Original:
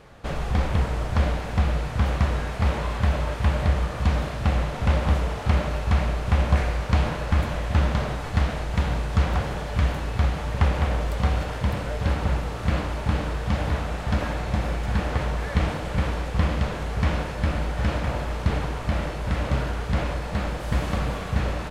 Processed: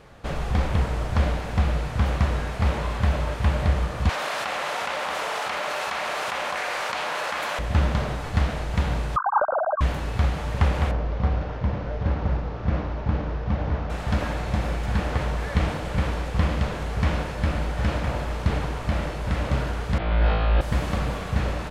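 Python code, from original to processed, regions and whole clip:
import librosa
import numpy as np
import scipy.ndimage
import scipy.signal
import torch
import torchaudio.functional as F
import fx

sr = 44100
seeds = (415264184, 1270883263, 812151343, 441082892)

y = fx.chain(x, sr, fx.highpass(hz=750.0, slope=12),
    fx.env_flatten(amount_pct=100), at=(4.09, 7.59))
y = fx.chain(y, sr, fx.sine_speech(),
    fx.brickwall_lowpass(high_hz=1600.0),
    fx.tilt_eq(slope=-2.5), at=(9.16, 9.81))
y = fx.chain(y, sr, fx.cvsd(bps=32000),
    fx.lowpass(hz=1100.0, slope=6), at=(10.91, 13.9))
y = fx.chain(y, sr, fx.steep_lowpass(hz=4000.0, slope=36),
    fx.over_compress(threshold_db=-31.0, ratio=-1.0),
    fx.room_flutter(wall_m=3.1, rt60_s=1.2), at=(19.98, 20.61))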